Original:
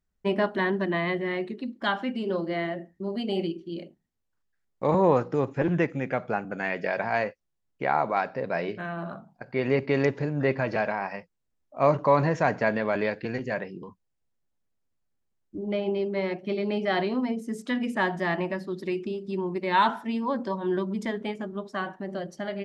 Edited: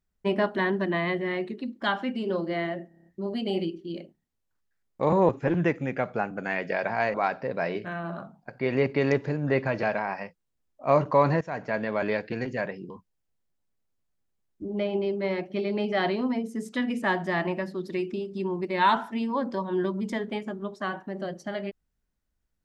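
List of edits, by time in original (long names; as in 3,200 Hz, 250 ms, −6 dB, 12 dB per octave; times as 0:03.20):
0:02.88: stutter 0.03 s, 7 plays
0:05.11–0:05.43: remove
0:07.28–0:08.07: remove
0:12.34–0:13.24: fade in equal-power, from −16.5 dB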